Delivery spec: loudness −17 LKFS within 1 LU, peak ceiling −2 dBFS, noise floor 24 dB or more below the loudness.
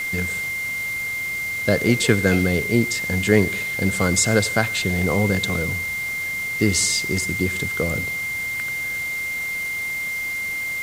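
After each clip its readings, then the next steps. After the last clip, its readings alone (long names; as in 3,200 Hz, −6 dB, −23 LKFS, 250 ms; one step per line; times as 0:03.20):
interfering tone 2,100 Hz; level of the tone −24 dBFS; background noise floor −27 dBFS; target noise floor −45 dBFS; integrated loudness −21.0 LKFS; sample peak −1.5 dBFS; target loudness −17.0 LKFS
→ notch filter 2,100 Hz, Q 30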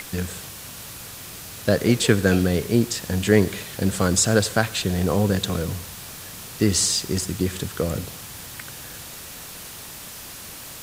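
interfering tone none found; background noise floor −39 dBFS; target noise floor −46 dBFS
→ broadband denoise 7 dB, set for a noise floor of −39 dBFS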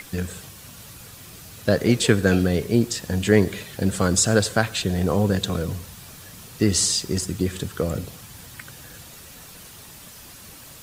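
background noise floor −44 dBFS; target noise floor −46 dBFS
→ broadband denoise 6 dB, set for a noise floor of −44 dBFS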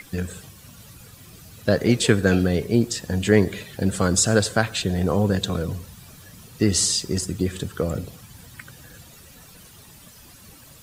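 background noise floor −48 dBFS; integrated loudness −22.0 LKFS; sample peak −2.0 dBFS; target loudness −17.0 LKFS
→ level +5 dB
brickwall limiter −2 dBFS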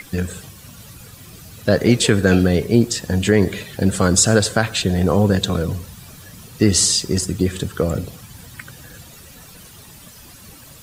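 integrated loudness −17.5 LKFS; sample peak −2.0 dBFS; background noise floor −43 dBFS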